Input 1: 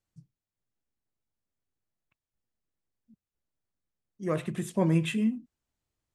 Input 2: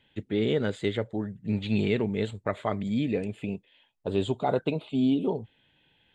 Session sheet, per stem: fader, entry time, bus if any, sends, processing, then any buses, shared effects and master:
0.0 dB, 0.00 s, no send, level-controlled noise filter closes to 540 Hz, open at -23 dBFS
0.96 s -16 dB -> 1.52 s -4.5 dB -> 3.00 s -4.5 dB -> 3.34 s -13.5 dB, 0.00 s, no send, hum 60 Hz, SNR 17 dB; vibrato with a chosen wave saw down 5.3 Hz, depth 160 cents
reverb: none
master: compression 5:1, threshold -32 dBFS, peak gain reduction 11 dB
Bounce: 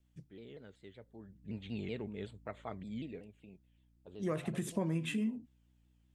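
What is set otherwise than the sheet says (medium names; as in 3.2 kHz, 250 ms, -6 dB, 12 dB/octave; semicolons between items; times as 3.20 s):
stem 1: missing level-controlled noise filter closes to 540 Hz, open at -23 dBFS; stem 2 -16.0 dB -> -26.0 dB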